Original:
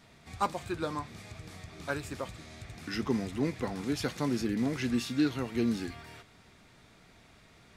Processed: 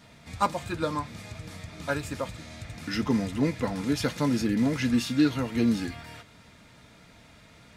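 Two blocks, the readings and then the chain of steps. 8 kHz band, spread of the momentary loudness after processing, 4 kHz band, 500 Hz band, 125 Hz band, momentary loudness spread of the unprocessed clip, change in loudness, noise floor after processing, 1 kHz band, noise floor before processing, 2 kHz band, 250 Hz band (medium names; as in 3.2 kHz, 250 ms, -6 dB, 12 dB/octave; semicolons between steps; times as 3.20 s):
+4.5 dB, 17 LU, +5.0 dB, +3.5 dB, +6.0 dB, 17 LU, +5.0 dB, -54 dBFS, +5.0 dB, -59 dBFS, +4.5 dB, +5.5 dB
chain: comb of notches 380 Hz; trim +6 dB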